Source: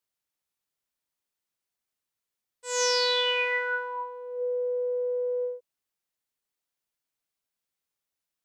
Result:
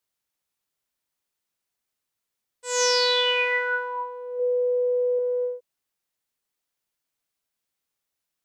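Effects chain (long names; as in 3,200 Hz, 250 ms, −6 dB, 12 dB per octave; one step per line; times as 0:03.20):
0:04.39–0:05.19: comb filter 3.7 ms, depth 45%
level +3.5 dB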